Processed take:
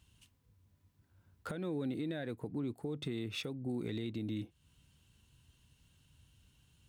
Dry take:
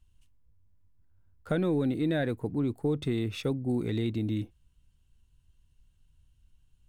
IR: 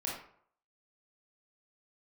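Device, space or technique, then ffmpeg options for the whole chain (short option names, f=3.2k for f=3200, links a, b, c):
broadcast voice chain: -af "highpass=110,deesser=1,acompressor=threshold=-46dB:ratio=3,equalizer=f=3.5k:t=o:w=1.5:g=3,alimiter=level_in=13dB:limit=-24dB:level=0:latency=1:release=253,volume=-13dB,volume=8dB"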